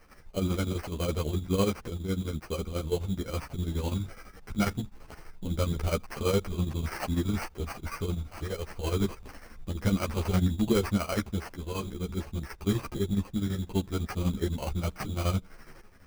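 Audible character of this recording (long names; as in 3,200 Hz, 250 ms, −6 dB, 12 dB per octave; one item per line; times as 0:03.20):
aliases and images of a low sample rate 3,600 Hz, jitter 0%
chopped level 12 Hz, depth 60%, duty 60%
a shimmering, thickened sound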